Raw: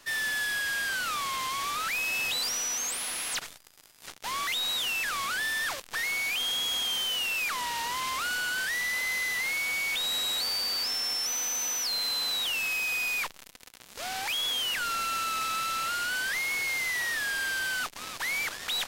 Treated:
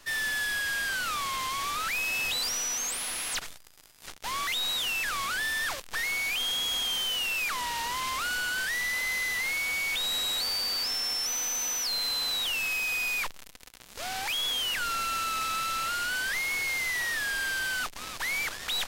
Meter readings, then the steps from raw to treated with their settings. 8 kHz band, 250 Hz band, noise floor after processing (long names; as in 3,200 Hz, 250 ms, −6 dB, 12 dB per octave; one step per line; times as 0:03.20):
0.0 dB, +0.5 dB, −50 dBFS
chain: low-shelf EQ 61 Hz +11.5 dB